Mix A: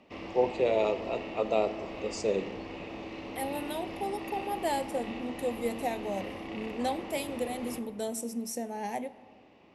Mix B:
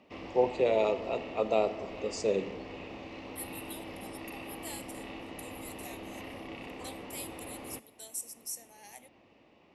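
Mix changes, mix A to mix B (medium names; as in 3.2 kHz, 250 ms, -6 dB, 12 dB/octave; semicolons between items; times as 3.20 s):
second voice: add differentiator; background: send off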